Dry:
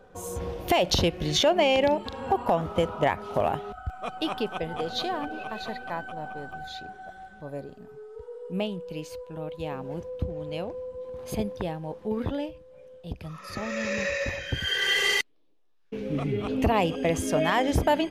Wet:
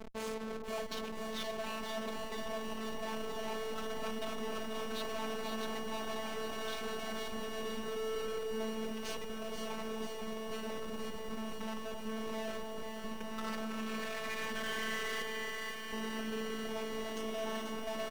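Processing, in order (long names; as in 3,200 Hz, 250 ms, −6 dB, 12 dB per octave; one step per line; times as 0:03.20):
high-pass filter 64 Hz 24 dB per octave
comb filter 4.9 ms, depth 97%
hum removal 145.9 Hz, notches 5
reversed playback
downward compressor 16 to 1, threshold −38 dBFS, peak gain reduction 25 dB
reversed playback
comparator with hysteresis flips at −45.5 dBFS
mid-hump overdrive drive 23 dB, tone 3,700 Hz, clips at −37 dBFS
phases set to zero 221 Hz
on a send: delay that swaps between a low-pass and a high-pass 262 ms, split 1,400 Hz, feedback 70%, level −6 dB
on the sum: feedback echo at a low word length 487 ms, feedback 80%, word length 10 bits, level −7 dB
level +4.5 dB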